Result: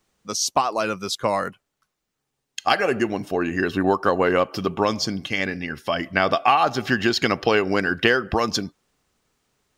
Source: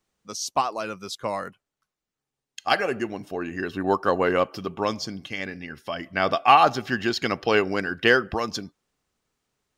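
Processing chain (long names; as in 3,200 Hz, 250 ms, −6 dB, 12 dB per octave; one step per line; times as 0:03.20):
downward compressor 4 to 1, threshold −23 dBFS, peak gain reduction 11 dB
level +7.5 dB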